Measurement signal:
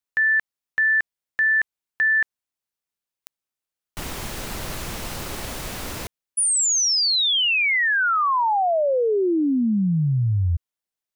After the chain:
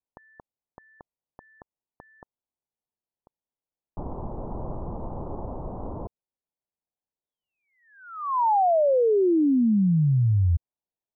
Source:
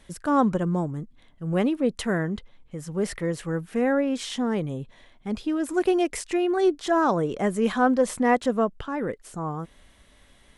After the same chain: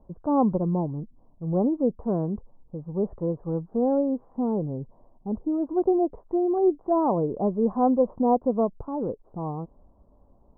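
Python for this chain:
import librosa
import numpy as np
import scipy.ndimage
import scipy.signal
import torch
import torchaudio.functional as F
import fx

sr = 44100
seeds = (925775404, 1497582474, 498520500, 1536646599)

y = scipy.signal.sosfilt(scipy.signal.butter(8, 1000.0, 'lowpass', fs=sr, output='sos'), x)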